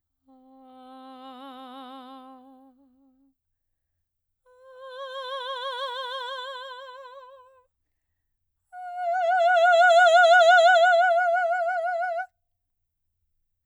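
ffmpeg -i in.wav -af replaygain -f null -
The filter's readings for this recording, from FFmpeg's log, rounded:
track_gain = +1.5 dB
track_peak = 0.289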